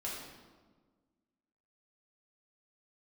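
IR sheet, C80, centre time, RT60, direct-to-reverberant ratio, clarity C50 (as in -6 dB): 3.5 dB, 70 ms, 1.5 s, -6.5 dB, 1.0 dB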